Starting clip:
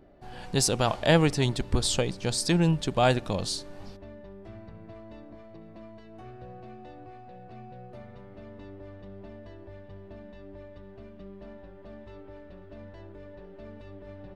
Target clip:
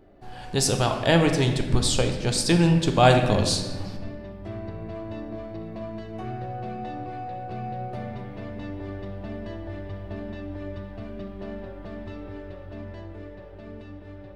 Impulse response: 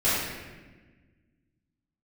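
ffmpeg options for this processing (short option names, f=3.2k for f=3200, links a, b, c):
-filter_complex "[0:a]dynaudnorm=f=650:g=9:m=9dB,asplit=2[a][b];[1:a]atrim=start_sample=2205[c];[b][c]afir=irnorm=-1:irlink=0,volume=-18dB[d];[a][d]amix=inputs=2:normalize=0"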